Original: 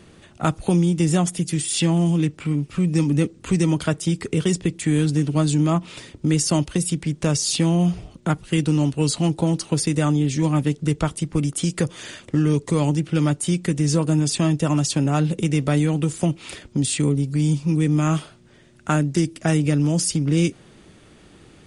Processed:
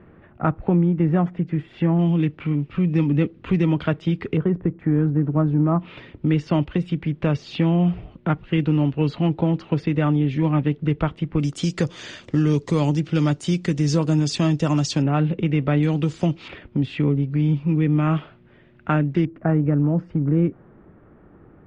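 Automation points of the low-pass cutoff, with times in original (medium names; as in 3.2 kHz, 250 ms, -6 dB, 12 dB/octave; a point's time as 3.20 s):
low-pass 24 dB/octave
1.9 kHz
from 1.99 s 3.1 kHz
from 4.37 s 1.5 kHz
from 5.80 s 2.9 kHz
from 11.40 s 6 kHz
from 15.02 s 2.9 kHz
from 15.83 s 5 kHz
from 16.48 s 2.8 kHz
from 19.25 s 1.5 kHz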